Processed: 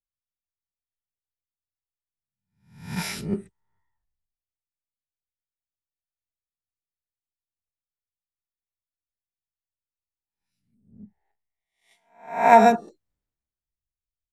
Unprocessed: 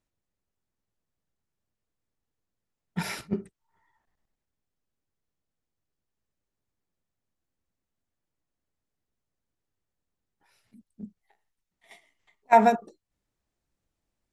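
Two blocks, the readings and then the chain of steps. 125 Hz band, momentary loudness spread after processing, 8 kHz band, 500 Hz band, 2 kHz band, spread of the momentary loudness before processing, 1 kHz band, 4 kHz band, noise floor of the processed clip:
+3.5 dB, 19 LU, +6.0 dB, +4.5 dB, +5.5 dB, 15 LU, +5.0 dB, +5.5 dB, under -85 dBFS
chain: spectral swells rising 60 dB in 0.78 s; three-band expander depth 70%; gain -3.5 dB

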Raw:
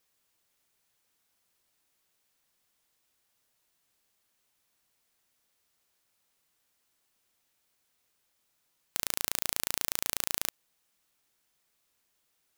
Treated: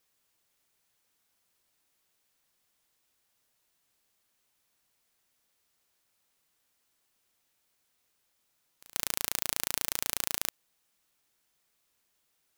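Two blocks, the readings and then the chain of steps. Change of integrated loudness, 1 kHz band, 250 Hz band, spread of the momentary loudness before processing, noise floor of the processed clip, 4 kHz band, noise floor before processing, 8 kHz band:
0.0 dB, 0.0 dB, 0.0 dB, 5 LU, -76 dBFS, 0.0 dB, -76 dBFS, 0.0 dB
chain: reverse echo 0.136 s -22.5 dB

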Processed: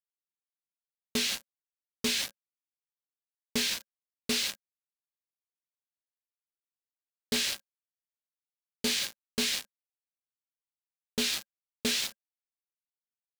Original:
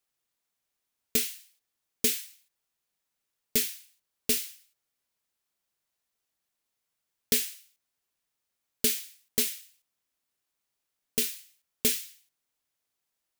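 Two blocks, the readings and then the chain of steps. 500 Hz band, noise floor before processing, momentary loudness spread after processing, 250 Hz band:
-1.0 dB, -84 dBFS, 8 LU, +2.5 dB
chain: LPF 5200 Hz 12 dB/oct; bell 4100 Hz +3.5 dB 0.47 oct; in parallel at -3 dB: vocal rider within 4 dB 0.5 s; on the sum: sample leveller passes 5; reverse; compressor 8:1, threshold -29 dBFS, peak gain reduction 16 dB; reverse; bit-crush 7-bit; small resonant body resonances 210/550/1600 Hz, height 7 dB

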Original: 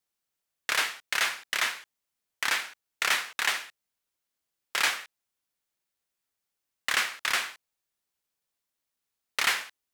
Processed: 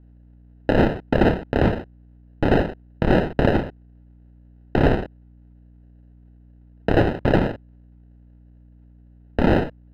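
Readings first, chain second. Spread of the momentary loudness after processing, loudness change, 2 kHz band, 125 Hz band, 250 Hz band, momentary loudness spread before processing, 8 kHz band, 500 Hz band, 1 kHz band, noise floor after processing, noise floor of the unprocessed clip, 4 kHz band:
11 LU, +6.5 dB, -2.5 dB, n/a, +34.0 dB, 11 LU, under -20 dB, +25.0 dB, +7.5 dB, -50 dBFS, -85 dBFS, -8.0 dB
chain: sample-and-hold 39×; hum 60 Hz, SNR 31 dB; air absorption 410 m; maximiser +22.5 dB; gain -6.5 dB

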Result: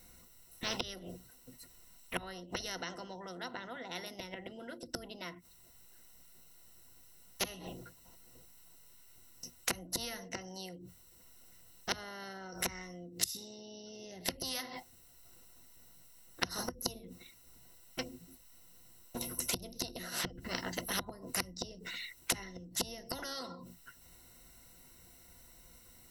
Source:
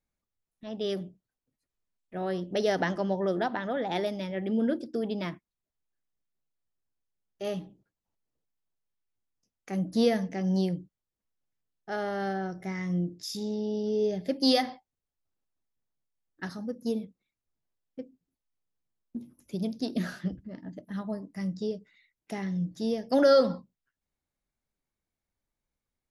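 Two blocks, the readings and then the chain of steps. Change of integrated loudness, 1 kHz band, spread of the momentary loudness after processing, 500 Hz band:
-10.0 dB, -9.0 dB, 22 LU, -17.0 dB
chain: high shelf 5200 Hz +9.5 dB; flipped gate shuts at -26 dBFS, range -31 dB; ripple EQ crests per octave 2, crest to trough 13 dB; spectral compressor 4:1; gain +11 dB

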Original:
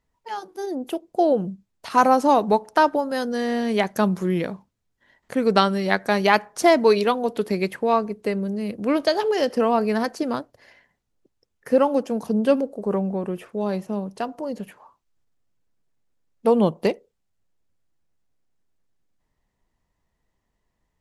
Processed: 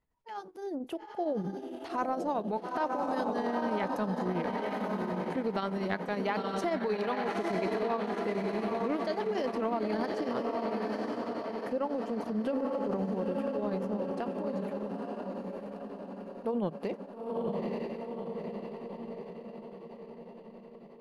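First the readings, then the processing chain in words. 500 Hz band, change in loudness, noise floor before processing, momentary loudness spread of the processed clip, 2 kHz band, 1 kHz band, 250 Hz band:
-10.0 dB, -11.5 dB, -76 dBFS, 11 LU, -12.0 dB, -11.0 dB, -9.0 dB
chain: on a send: diffused feedback echo 0.913 s, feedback 57%, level -5 dB; on the sum: tremolo triangle 11 Hz, depth 80%; compressor 6:1, threshold -23 dBFS, peak gain reduction 10.5 dB; high shelf 4800 Hz -12 dB; transient shaper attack -6 dB, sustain +3 dB; gain -2.5 dB

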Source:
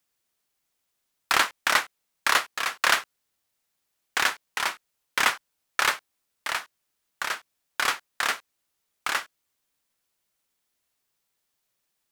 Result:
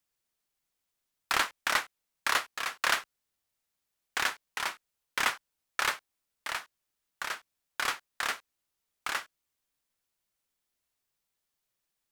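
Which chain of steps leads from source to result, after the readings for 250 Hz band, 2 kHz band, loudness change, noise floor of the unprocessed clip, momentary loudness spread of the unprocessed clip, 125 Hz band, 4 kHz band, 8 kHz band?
-5.5 dB, -6.0 dB, -6.0 dB, -78 dBFS, 12 LU, n/a, -6.0 dB, -6.0 dB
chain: low shelf 78 Hz +7 dB; gain -6 dB

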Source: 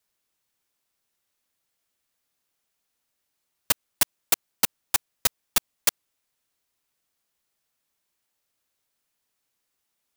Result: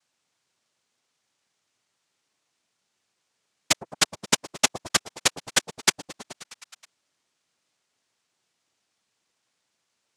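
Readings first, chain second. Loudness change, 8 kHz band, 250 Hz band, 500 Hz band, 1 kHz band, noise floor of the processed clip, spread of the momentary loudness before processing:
+0.5 dB, +2.5 dB, +7.5 dB, +6.5 dB, +4.0 dB, -78 dBFS, 3 LU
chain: delay with a stepping band-pass 0.106 s, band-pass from 170 Hz, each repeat 0.7 oct, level -3 dB; noise vocoder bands 2; gain +5.5 dB

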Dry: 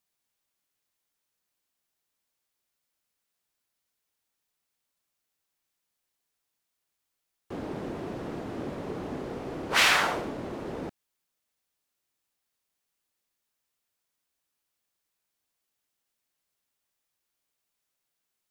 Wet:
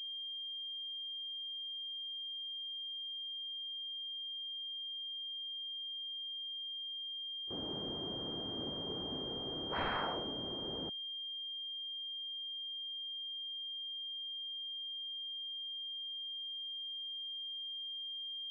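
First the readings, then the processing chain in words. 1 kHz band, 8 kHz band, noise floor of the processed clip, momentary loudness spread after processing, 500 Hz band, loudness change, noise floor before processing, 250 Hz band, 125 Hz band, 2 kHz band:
-10.5 dB, under -35 dB, -43 dBFS, 1 LU, -8.5 dB, -10.5 dB, -83 dBFS, -8.0 dB, -8.0 dB, -18.0 dB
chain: self-modulated delay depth 0.14 ms; pre-echo 31 ms -18 dB; pulse-width modulation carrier 3200 Hz; gain -8.5 dB

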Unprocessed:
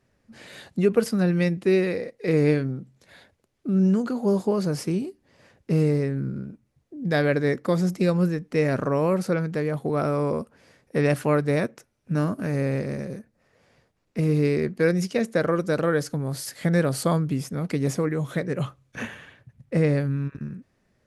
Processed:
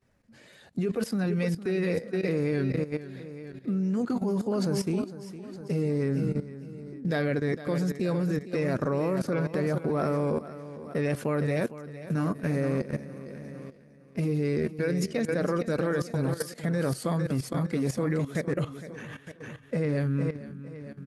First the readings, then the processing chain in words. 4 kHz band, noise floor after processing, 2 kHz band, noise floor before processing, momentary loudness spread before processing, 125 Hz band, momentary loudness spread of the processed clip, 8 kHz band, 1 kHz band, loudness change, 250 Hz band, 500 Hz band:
-4.5 dB, -54 dBFS, -5.0 dB, -71 dBFS, 12 LU, -4.0 dB, 14 LU, -4.5 dB, -5.0 dB, -4.5 dB, -4.0 dB, -5.0 dB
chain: bin magnitudes rounded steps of 15 dB; feedback echo 0.457 s, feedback 44%, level -9.5 dB; level quantiser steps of 14 dB; gain +1.5 dB

